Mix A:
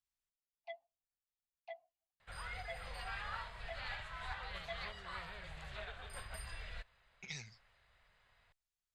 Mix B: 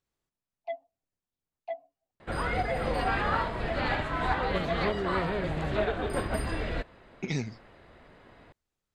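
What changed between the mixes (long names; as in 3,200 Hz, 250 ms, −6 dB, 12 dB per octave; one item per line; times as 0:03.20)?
speech +4.5 dB
second sound +7.5 dB
master: remove guitar amp tone stack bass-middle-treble 10-0-10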